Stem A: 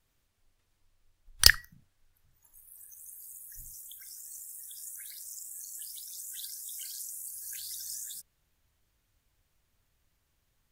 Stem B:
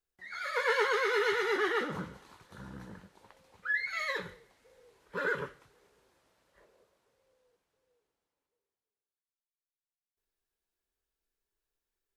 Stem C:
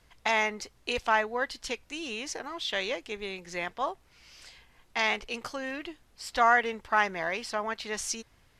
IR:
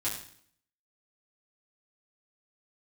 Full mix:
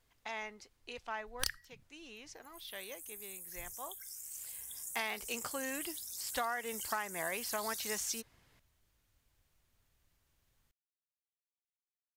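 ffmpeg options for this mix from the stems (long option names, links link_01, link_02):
-filter_complex "[0:a]volume=-1dB[link_01];[2:a]highpass=48,volume=-4dB,afade=type=in:start_time=4.29:duration=0.41:silence=0.266073[link_02];[link_01][link_02]amix=inputs=2:normalize=0,acompressor=threshold=-32dB:ratio=20"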